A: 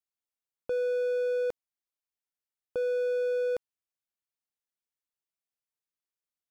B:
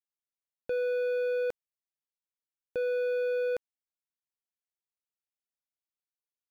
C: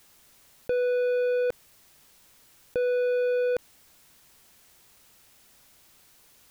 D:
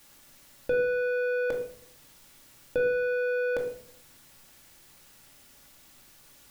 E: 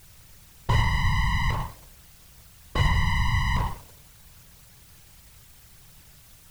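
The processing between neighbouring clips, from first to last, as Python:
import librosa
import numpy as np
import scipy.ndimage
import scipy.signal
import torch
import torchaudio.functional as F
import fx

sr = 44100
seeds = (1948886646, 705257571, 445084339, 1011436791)

y1 = fx.leveller(x, sr, passes=3)
y1 = F.gain(torch.from_numpy(y1), -3.5).numpy()
y2 = fx.low_shelf(y1, sr, hz=200.0, db=6.0)
y2 = fx.env_flatten(y2, sr, amount_pct=50)
y2 = F.gain(torch.from_numpy(y2), 3.5).numpy()
y3 = fx.room_shoebox(y2, sr, seeds[0], volume_m3=820.0, walls='furnished', distance_m=2.4)
y4 = np.abs(y3)
y4 = fx.whisperise(y4, sr, seeds[1])
y4 = F.gain(torch.from_numpy(y4), 6.0).numpy()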